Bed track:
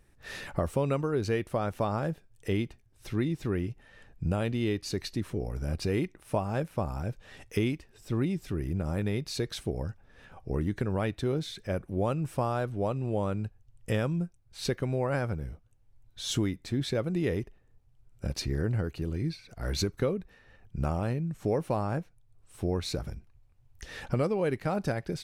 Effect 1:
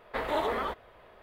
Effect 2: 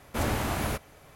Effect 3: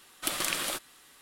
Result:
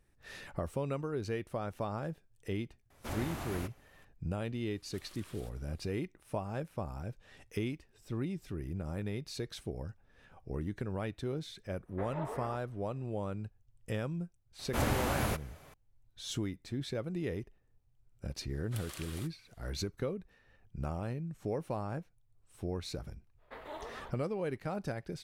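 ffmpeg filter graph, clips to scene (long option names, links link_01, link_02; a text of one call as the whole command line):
ffmpeg -i bed.wav -i cue0.wav -i cue1.wav -i cue2.wav -filter_complex "[2:a]asplit=2[link_01][link_02];[3:a]asplit=2[link_03][link_04];[1:a]asplit=2[link_05][link_06];[0:a]volume=-7.5dB[link_07];[link_03]acompressor=threshold=-36dB:ratio=6:attack=3.2:release=140:knee=1:detection=peak[link_08];[link_05]lowpass=1700[link_09];[link_01]atrim=end=1.15,asetpts=PTS-STARTPTS,volume=-11.5dB,afade=type=in:duration=0.004:curve=hsin,afade=type=out:start_time=1.146:duration=0.004:curve=hsin,adelay=2900[link_10];[link_08]atrim=end=1.21,asetpts=PTS-STARTPTS,volume=-17.5dB,afade=type=in:duration=0.004:curve=hsin,afade=type=out:start_time=1.206:duration=0.004:curve=hsin,adelay=4710[link_11];[link_09]atrim=end=1.22,asetpts=PTS-STARTPTS,volume=-11.5dB,afade=type=in:duration=0.05,afade=type=out:start_time=1.17:duration=0.05,adelay=11840[link_12];[link_02]atrim=end=1.15,asetpts=PTS-STARTPTS,volume=-3dB,afade=type=in:duration=0.004:curve=hsin,afade=type=out:start_time=1.146:duration=0.004:curve=hsin,adelay=14590[link_13];[link_04]atrim=end=1.21,asetpts=PTS-STARTPTS,volume=-17dB,afade=type=in:duration=0.004:curve=hsin,afade=type=out:start_time=1.206:duration=0.004:curve=hsin,adelay=18490[link_14];[link_06]atrim=end=1.22,asetpts=PTS-STARTPTS,volume=-15.5dB,afade=type=in:duration=0.05,afade=type=out:start_time=1.17:duration=0.05,adelay=23370[link_15];[link_07][link_10][link_11][link_12][link_13][link_14][link_15]amix=inputs=7:normalize=0" out.wav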